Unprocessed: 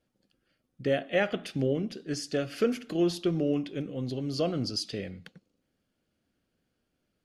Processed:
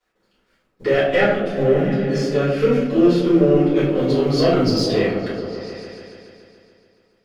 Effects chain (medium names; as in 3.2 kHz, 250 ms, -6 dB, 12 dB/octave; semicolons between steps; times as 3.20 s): companding laws mixed up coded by A; 1.20–3.72 s: harmonic-percussive split percussive -14 dB; peak limiter -23 dBFS, peak gain reduction 7.5 dB; overdrive pedal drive 15 dB, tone 2 kHz, clips at -17 dBFS; delay with an opening low-pass 142 ms, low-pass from 200 Hz, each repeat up 1 oct, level -3 dB; simulated room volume 68 m³, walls mixed, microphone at 3.4 m